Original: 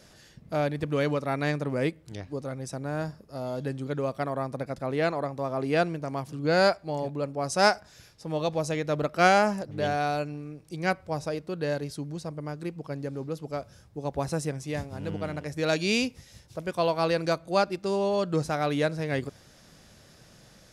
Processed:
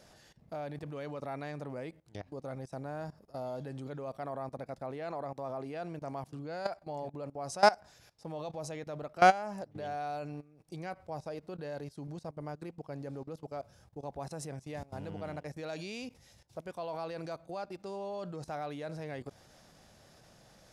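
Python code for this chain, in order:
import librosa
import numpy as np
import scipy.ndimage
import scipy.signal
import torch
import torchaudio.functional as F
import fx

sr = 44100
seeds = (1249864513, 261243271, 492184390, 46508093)

y = fx.level_steps(x, sr, step_db=19)
y = fx.peak_eq(y, sr, hz=760.0, db=7.0, octaves=0.9)
y = y * librosa.db_to_amplitude(-4.0)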